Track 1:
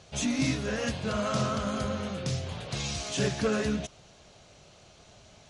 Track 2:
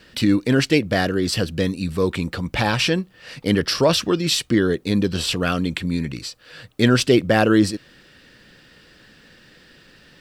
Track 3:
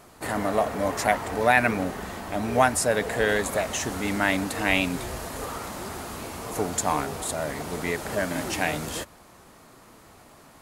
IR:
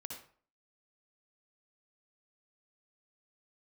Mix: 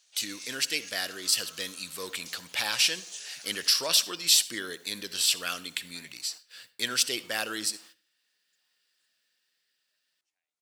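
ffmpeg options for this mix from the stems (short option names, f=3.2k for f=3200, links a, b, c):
-filter_complex "[0:a]highpass=f=1.4k:p=1,volume=-2.5dB[a];[1:a]agate=range=-20dB:threshold=-43dB:ratio=16:detection=peak,dynaudnorm=f=130:g=17:m=4.5dB,volume=0dB,asplit=3[b][c][d];[c]volume=-8.5dB[e];[2:a]lowpass=5.9k,acompressor=threshold=-37dB:ratio=3,acrusher=bits=11:mix=0:aa=0.000001,adelay=1750,volume=-6dB[f];[d]apad=whole_len=545428[g];[f][g]sidechaingate=range=-33dB:threshold=-38dB:ratio=16:detection=peak[h];[3:a]atrim=start_sample=2205[i];[e][i]afir=irnorm=-1:irlink=0[j];[a][b][h][j]amix=inputs=4:normalize=0,aderivative"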